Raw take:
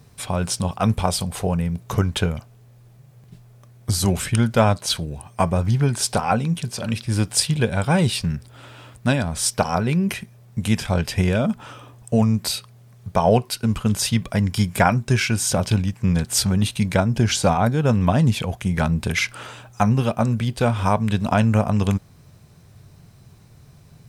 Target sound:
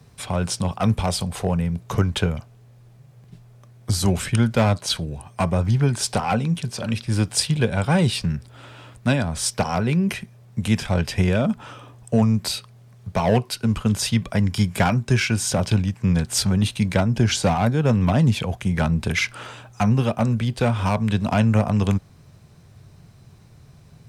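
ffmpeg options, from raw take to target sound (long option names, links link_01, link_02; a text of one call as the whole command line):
ffmpeg -i in.wav -filter_complex "[0:a]highshelf=frequency=11000:gain=-9,acrossover=split=100|420|1800[link_01][link_02][link_03][link_04];[link_03]volume=20.5dB,asoftclip=hard,volume=-20.5dB[link_05];[link_01][link_02][link_05][link_04]amix=inputs=4:normalize=0" out.wav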